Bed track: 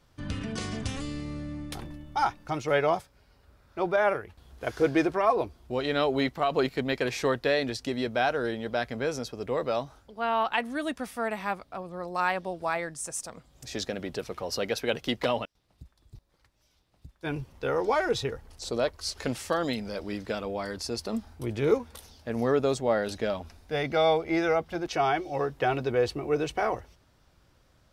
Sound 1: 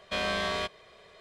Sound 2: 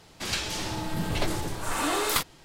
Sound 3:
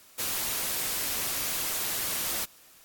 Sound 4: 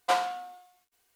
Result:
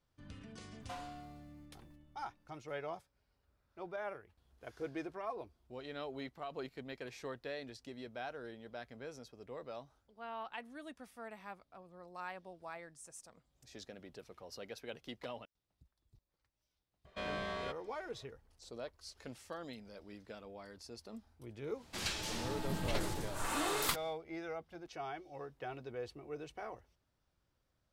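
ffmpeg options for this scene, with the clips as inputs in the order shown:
-filter_complex "[0:a]volume=0.126[s0];[4:a]alimiter=limit=0.0708:level=0:latency=1:release=326[s1];[1:a]highshelf=f=2400:g=-10[s2];[s1]atrim=end=1.15,asetpts=PTS-STARTPTS,volume=0.237,afade=t=in:d=0.004:c=hsin,afade=t=out:st=1.146:d=0.004:c=hsin,adelay=810[s3];[s2]atrim=end=1.2,asetpts=PTS-STARTPTS,volume=0.398,afade=t=in:d=0.004:c=hsin,afade=t=out:st=1.196:d=0.004:c=hsin,adelay=17050[s4];[2:a]atrim=end=2.44,asetpts=PTS-STARTPTS,volume=0.376,afade=t=in:d=0.1,afade=t=out:st=2.34:d=0.1,adelay=21730[s5];[s0][s3][s4][s5]amix=inputs=4:normalize=0"

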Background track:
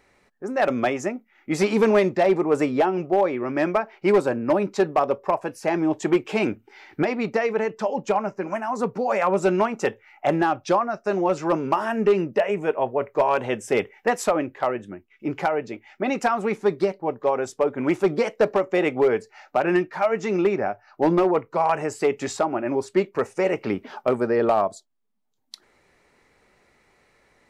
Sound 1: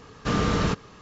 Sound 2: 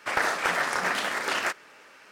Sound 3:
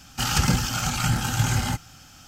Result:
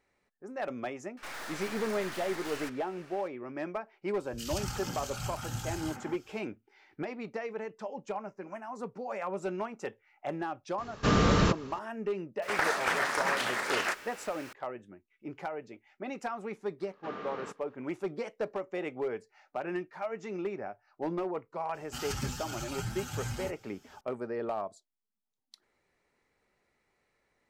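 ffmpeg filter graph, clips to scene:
-filter_complex "[2:a]asplit=2[s0][s1];[3:a]asplit=2[s2][s3];[1:a]asplit=2[s4][s5];[0:a]volume=0.188[s6];[s0]aeval=exprs='(tanh(100*val(0)+0.6)-tanh(0.6))/100':c=same[s7];[s2]acrossover=split=170|2100[s8][s9][s10];[s10]adelay=60[s11];[s9]adelay=250[s12];[s8][s12][s11]amix=inputs=3:normalize=0[s13];[s1]aeval=exprs='val(0)+0.5*0.0075*sgn(val(0))':c=same[s14];[s5]highpass=350,lowpass=2300[s15];[s3]asplit=2[s16][s17];[s17]adelay=7.3,afreqshift=2.7[s18];[s16][s18]amix=inputs=2:normalize=1[s19];[s7]atrim=end=2.11,asetpts=PTS-STARTPTS,volume=0.891,afade=t=in:d=0.004:c=hsin,afade=t=out:st=2.106:d=0.004:c=hsin,adelay=1170[s20];[s13]atrim=end=2.27,asetpts=PTS-STARTPTS,volume=0.211,afade=t=in:d=0.004:c=hsin,afade=t=out:st=2.266:d=0.004:c=hsin,adelay=4140[s21];[s4]atrim=end=1.01,asetpts=PTS-STARTPTS,volume=0.944,afade=t=in:d=0.004:c=hsin,afade=t=out:st=1.006:d=0.004:c=hsin,adelay=10780[s22];[s14]atrim=end=2.11,asetpts=PTS-STARTPTS,volume=0.631,afade=t=in:d=0.004:c=hsin,afade=t=out:st=2.106:d=0.004:c=hsin,adelay=12420[s23];[s15]atrim=end=1.01,asetpts=PTS-STARTPTS,volume=0.211,afade=t=in:d=0.05,afade=t=out:st=0.96:d=0.05,adelay=16780[s24];[s19]atrim=end=2.27,asetpts=PTS-STARTPTS,volume=0.266,afade=t=in:d=0.004:c=hsin,afade=t=out:st=2.266:d=0.004:c=hsin,adelay=21740[s25];[s6][s20][s21][s22][s23][s24][s25]amix=inputs=7:normalize=0"

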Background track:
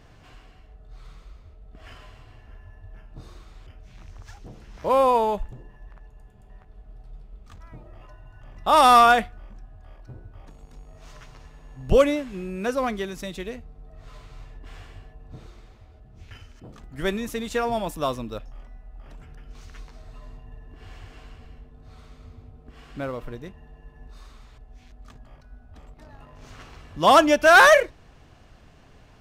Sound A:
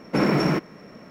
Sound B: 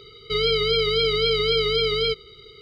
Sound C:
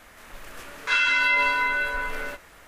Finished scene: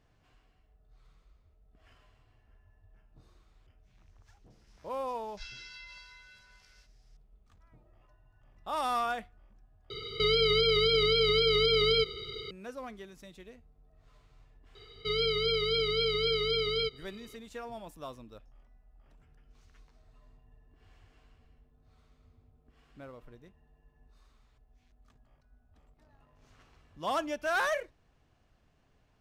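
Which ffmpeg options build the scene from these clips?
-filter_complex "[2:a]asplit=2[s0][s1];[0:a]volume=0.141[s2];[3:a]bandpass=f=5200:t=q:w=4.9:csg=0[s3];[s0]alimiter=level_in=12.6:limit=0.891:release=50:level=0:latency=1[s4];[s2]asplit=2[s5][s6];[s5]atrim=end=9.904[s7];[s4]atrim=end=2.61,asetpts=PTS-STARTPTS,volume=0.141[s8];[s6]atrim=start=12.506[s9];[s3]atrim=end=2.67,asetpts=PTS-STARTPTS,volume=0.376,afade=t=in:d=0.004:c=hsin,afade=t=out:st=2.666:d=0.004:c=hsin,adelay=4500[s10];[s1]atrim=end=2.61,asetpts=PTS-STARTPTS,volume=0.398,afade=t=in:d=0.004:c=hsin,afade=t=out:st=2.606:d=0.004:c=hsin,adelay=14750[s11];[s7][s8]acrossfade=d=0.004:c1=hsin:c2=hsin[s12];[s12][s9]acrossfade=d=0.004:c1=hsin:c2=hsin[s13];[s13][s10][s11]amix=inputs=3:normalize=0"

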